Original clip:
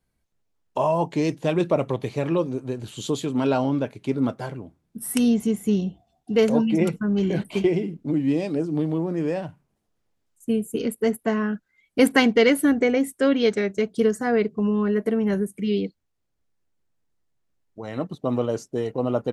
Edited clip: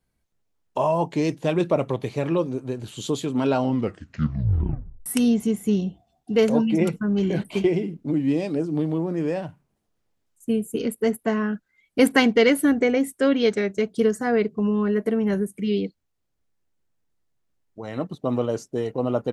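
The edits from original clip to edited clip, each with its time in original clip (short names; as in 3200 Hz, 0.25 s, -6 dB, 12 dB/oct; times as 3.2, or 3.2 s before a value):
3.61 tape stop 1.45 s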